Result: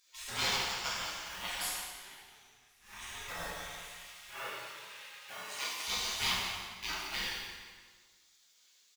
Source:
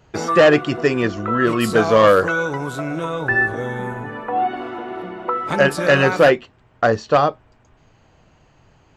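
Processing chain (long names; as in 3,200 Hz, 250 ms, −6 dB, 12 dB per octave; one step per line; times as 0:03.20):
mu-law and A-law mismatch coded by mu
gate on every frequency bin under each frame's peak −30 dB weak
0:04.30–0:05.87: high-pass filter 320 Hz 12 dB per octave
repeating echo 175 ms, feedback 36%, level −10.5 dB
0:01.61–0:03.00: duck −22 dB, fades 0.20 s
dense smooth reverb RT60 1.4 s, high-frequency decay 0.85×, DRR −5.5 dB
level −4.5 dB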